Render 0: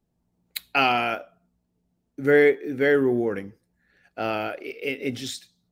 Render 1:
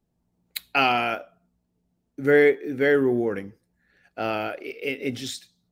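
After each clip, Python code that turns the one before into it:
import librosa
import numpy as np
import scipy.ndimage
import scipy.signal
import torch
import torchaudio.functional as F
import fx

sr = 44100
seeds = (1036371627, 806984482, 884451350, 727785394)

y = x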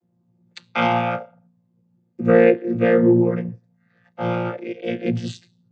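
y = fx.chord_vocoder(x, sr, chord='bare fifth', root=46)
y = y * 10.0 ** (5.5 / 20.0)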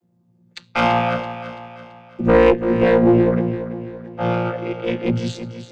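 y = fx.diode_clip(x, sr, knee_db=-16.5)
y = fx.echo_feedback(y, sr, ms=334, feedback_pct=45, wet_db=-11.5)
y = y * 10.0 ** (4.0 / 20.0)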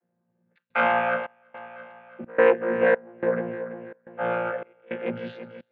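y = fx.cabinet(x, sr, low_hz=280.0, low_slope=12, high_hz=2700.0, hz=(320.0, 530.0, 1600.0), db=(-9, 4, 10))
y = fx.step_gate(y, sr, bpm=107, pattern='xxxx.xxxx..x', floor_db=-24.0, edge_ms=4.5)
y = y * 10.0 ** (-5.5 / 20.0)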